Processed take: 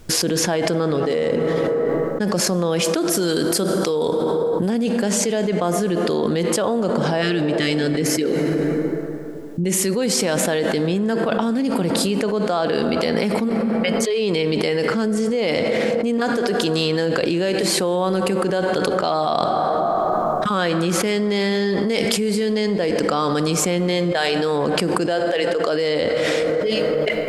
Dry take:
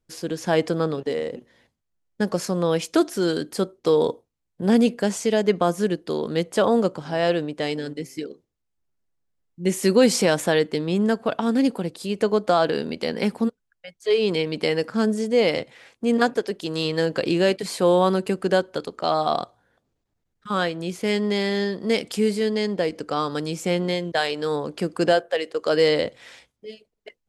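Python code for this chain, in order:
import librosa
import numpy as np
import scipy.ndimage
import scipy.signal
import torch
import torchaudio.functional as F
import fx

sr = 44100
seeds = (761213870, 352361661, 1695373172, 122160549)

y = fx.high_shelf(x, sr, hz=5600.0, db=8.5, at=(3.1, 4.7))
y = fx.spec_repair(y, sr, seeds[0], start_s=7.24, length_s=0.55, low_hz=450.0, high_hz=1100.0, source='after')
y = fx.rev_plate(y, sr, seeds[1], rt60_s=2.9, hf_ratio=0.45, predelay_ms=0, drr_db=13.0)
y = fx.env_flatten(y, sr, amount_pct=100)
y = y * librosa.db_to_amplitude(-7.0)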